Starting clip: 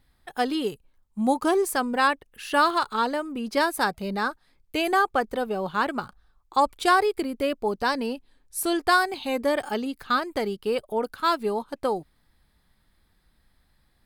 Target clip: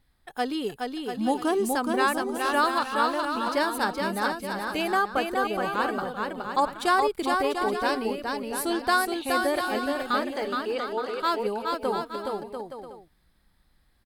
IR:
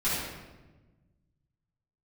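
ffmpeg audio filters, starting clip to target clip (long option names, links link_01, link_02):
-filter_complex "[0:a]asettb=1/sr,asplit=3[link_01][link_02][link_03];[link_01]atrim=end=10.354[link_04];[link_02]atrim=start=10.35:end=11.2,asetpts=PTS-STARTPTS,afade=type=in:duration=0.004:curve=qsin,afade=type=out:start_time=0.846:duration=0.004:curve=qsin,highpass=350,lowpass=7000[link_05];[link_03]atrim=start=11.196[link_06];[link_04][link_05]acrossfade=duration=0.004:curve1=hsin:curve2=qsin[link_07];[link_07][link_06]acrossfade=duration=0.004:curve1=qsin:curve2=hsin,aecho=1:1:420|693|870.4|985.8|1061:0.631|0.398|0.251|0.158|0.1,volume=-3dB"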